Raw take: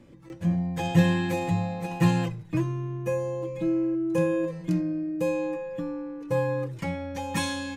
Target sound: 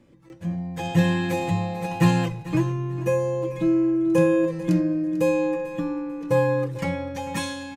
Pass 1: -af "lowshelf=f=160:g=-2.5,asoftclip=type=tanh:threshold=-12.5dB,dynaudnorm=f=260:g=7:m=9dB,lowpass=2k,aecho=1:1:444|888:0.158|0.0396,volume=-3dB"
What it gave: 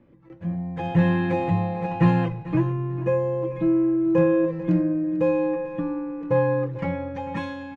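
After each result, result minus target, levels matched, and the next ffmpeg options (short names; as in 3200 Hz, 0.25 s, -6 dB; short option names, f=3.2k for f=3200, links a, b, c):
soft clip: distortion +18 dB; 2000 Hz band -2.5 dB
-af "lowshelf=f=160:g=-2.5,asoftclip=type=tanh:threshold=-2dB,dynaudnorm=f=260:g=7:m=9dB,lowpass=2k,aecho=1:1:444|888:0.158|0.0396,volume=-3dB"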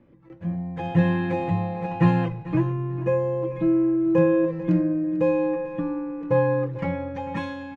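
2000 Hz band -2.5 dB
-af "lowshelf=f=160:g=-2.5,asoftclip=type=tanh:threshold=-2dB,dynaudnorm=f=260:g=7:m=9dB,aecho=1:1:444|888:0.158|0.0396,volume=-3dB"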